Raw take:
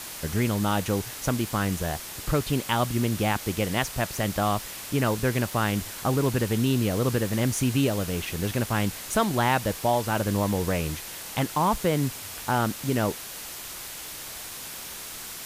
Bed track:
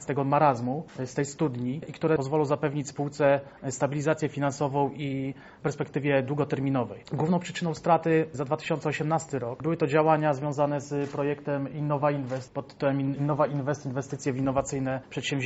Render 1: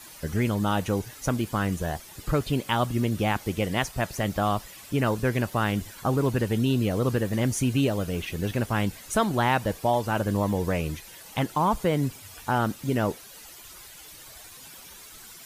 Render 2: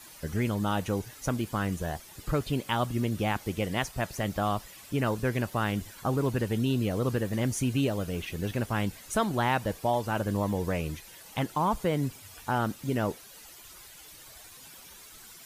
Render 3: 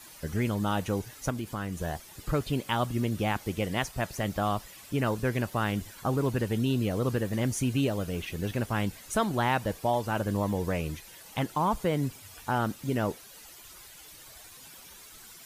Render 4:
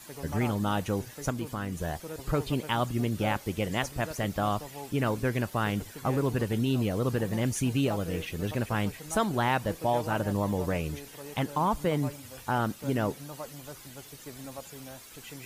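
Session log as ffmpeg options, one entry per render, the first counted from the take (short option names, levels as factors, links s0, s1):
-af "afftdn=nr=12:nf=-39"
-af "volume=0.668"
-filter_complex "[0:a]asettb=1/sr,asplit=3[s0][s1][s2];[s0]atrim=end=1.304[s3];[s1]atrim=start=1.3:end=1.77,asetpts=PTS-STARTPTS,afade=t=in:d=0.004:c=qsin,afade=t=out:st=0.466:d=0.004:c=qsin,acompressor=threshold=0.0251:ratio=2:attack=3.2:release=140:knee=1:detection=peak[s4];[s2]atrim=start=1.766[s5];[s3][s4]acrossfade=d=0.004:c1=hsin:c2=qsin[s6];[s6][s5]acrossfade=d=0.004:c1=qsin:c2=hsin"
-filter_complex "[1:a]volume=0.15[s0];[0:a][s0]amix=inputs=2:normalize=0"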